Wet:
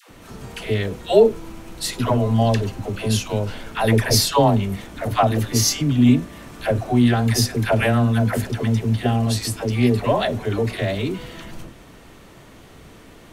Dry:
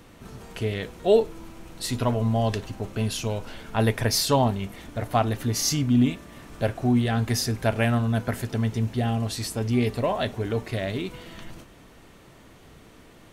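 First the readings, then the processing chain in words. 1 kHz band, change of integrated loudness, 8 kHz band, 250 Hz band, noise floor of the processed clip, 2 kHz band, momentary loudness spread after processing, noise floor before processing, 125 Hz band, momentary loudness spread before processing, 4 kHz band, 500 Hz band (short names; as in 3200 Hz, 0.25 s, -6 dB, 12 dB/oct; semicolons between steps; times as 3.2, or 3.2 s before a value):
+5.5 dB, +5.5 dB, +5.5 dB, +5.5 dB, -45 dBFS, +5.5 dB, 12 LU, -51 dBFS, +5.5 dB, 13 LU, +5.5 dB, +5.5 dB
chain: dispersion lows, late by 0.1 s, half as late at 600 Hz; gain +5.5 dB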